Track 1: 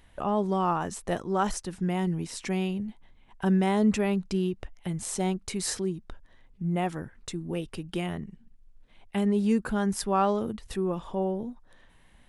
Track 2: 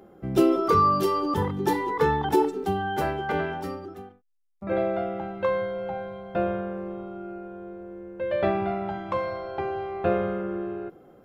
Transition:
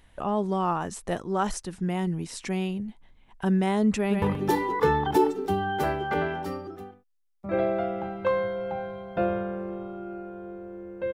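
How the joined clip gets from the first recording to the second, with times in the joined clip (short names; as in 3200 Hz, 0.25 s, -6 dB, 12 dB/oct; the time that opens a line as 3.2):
track 1
3.97–4.22 echo throw 0.13 s, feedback 45%, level -4 dB
4.22 switch to track 2 from 1.4 s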